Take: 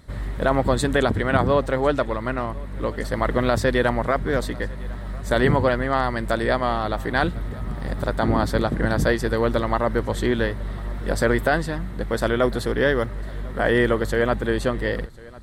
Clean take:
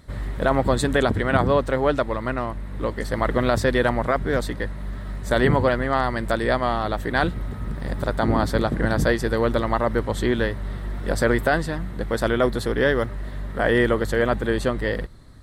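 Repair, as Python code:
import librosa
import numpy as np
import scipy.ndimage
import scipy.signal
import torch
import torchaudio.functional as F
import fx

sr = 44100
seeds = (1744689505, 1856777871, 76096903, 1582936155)

y = fx.fix_echo_inverse(x, sr, delay_ms=1050, level_db=-22.5)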